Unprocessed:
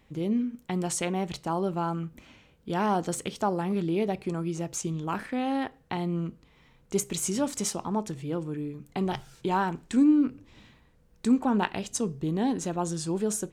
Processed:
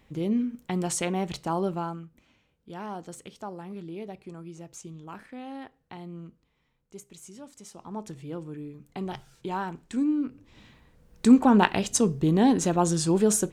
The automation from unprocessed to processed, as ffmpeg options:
-af "volume=25dB,afade=t=out:st=1.65:d=0.41:silence=0.251189,afade=t=out:st=6.25:d=0.74:silence=0.473151,afade=t=in:st=7.68:d=0.41:silence=0.237137,afade=t=in:st=10.31:d=0.99:silence=0.266073"

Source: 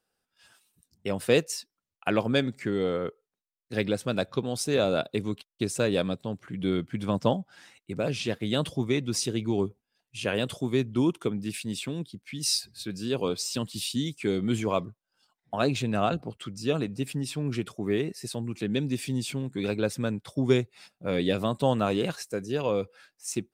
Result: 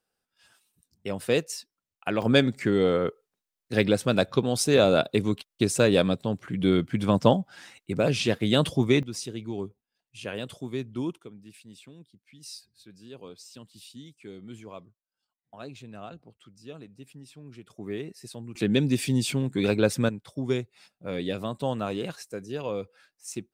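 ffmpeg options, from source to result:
-af "asetnsamples=n=441:p=0,asendcmd='2.22 volume volume 5dB;9.03 volume volume -6.5dB;11.19 volume volume -16dB;17.7 volume volume -7dB;18.55 volume volume 5dB;20.09 volume volume -4.5dB',volume=-2dB"

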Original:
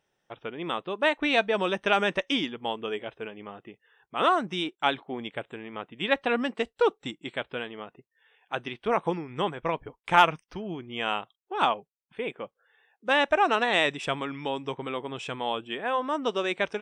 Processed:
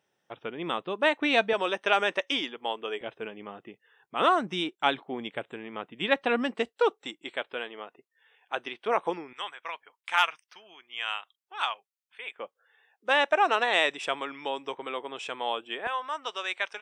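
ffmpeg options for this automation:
-af "asetnsamples=n=441:p=0,asendcmd='1.53 highpass f 390;3.01 highpass f 140;6.69 highpass f 370;9.33 highpass f 1400;12.39 highpass f 410;15.87 highpass f 990',highpass=120"

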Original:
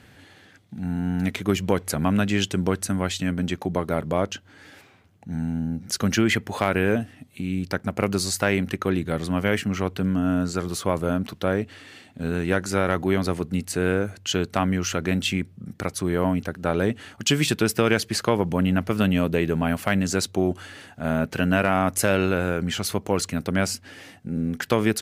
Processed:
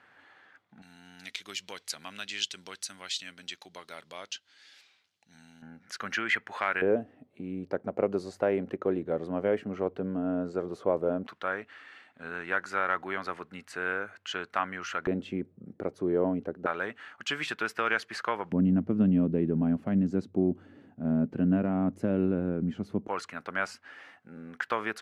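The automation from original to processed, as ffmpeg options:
-af "asetnsamples=n=441:p=0,asendcmd='0.82 bandpass f 4300;5.62 bandpass f 1600;6.82 bandpass f 500;11.27 bandpass f 1400;15.07 bandpass f 420;16.66 bandpass f 1400;18.52 bandpass f 240;23.08 bandpass f 1300',bandpass=f=1.2k:t=q:w=1.6:csg=0"

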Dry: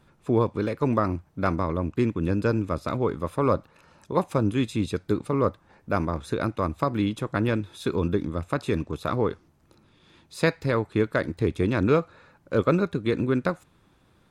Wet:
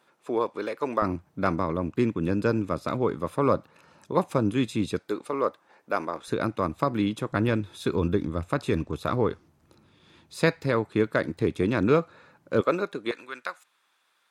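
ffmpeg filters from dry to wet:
-af "asetnsamples=n=441:p=0,asendcmd='1.02 highpass f 120;4.99 highpass f 410;6.28 highpass f 120;7.32 highpass f 54;10.6 highpass f 120;12.61 highpass f 380;13.11 highpass f 1200',highpass=430"

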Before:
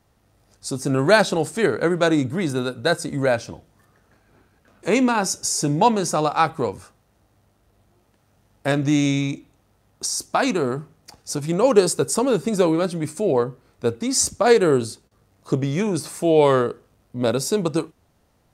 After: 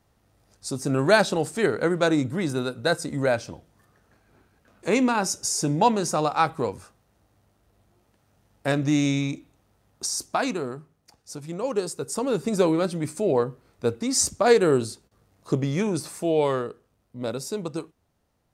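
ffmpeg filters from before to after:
-af "volume=5.5dB,afade=t=out:st=10.22:d=0.57:silence=0.398107,afade=t=in:st=11.99:d=0.56:silence=0.375837,afade=t=out:st=15.84:d=0.78:silence=0.473151"

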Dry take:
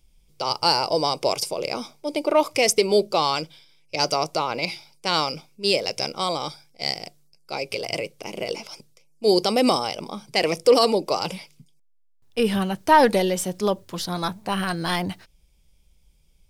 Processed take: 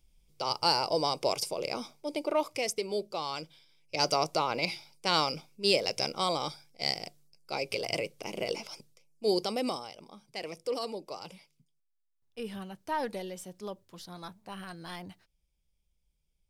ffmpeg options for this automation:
-af "volume=3dB,afade=t=out:st=1.92:d=0.82:silence=0.421697,afade=t=in:st=3.25:d=0.9:silence=0.334965,afade=t=out:st=8.66:d=1.23:silence=0.223872"

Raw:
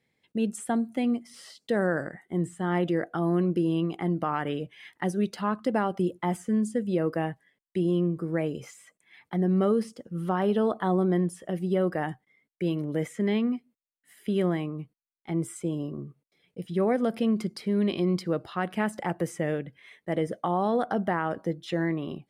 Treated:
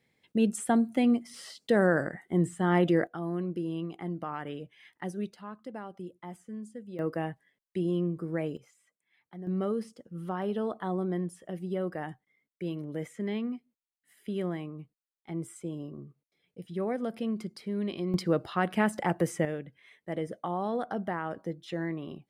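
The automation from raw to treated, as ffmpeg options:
-af "asetnsamples=n=441:p=0,asendcmd='3.07 volume volume -8dB;5.33 volume volume -15dB;6.99 volume volume -4dB;8.57 volume volume -16dB;9.47 volume volume -7dB;18.14 volume volume 1.5dB;19.45 volume volume -6dB',volume=2dB"

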